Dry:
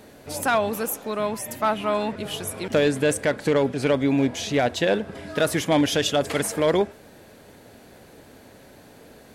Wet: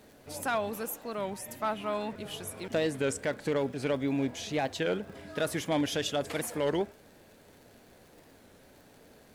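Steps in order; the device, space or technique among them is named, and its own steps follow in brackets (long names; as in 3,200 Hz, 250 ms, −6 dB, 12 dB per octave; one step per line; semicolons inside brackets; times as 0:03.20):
warped LP (wow of a warped record 33 1/3 rpm, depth 160 cents; surface crackle 70 per second −38 dBFS; pink noise bed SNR 35 dB)
level −9 dB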